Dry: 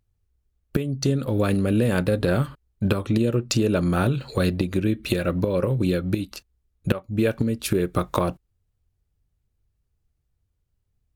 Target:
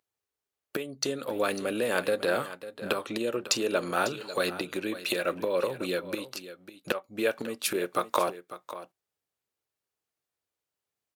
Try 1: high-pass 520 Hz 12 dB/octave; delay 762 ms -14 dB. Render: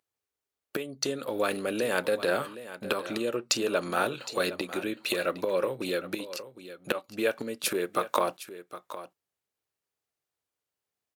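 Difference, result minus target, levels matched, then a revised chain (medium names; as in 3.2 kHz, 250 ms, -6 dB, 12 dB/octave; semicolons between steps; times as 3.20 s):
echo 214 ms late
high-pass 520 Hz 12 dB/octave; delay 548 ms -14 dB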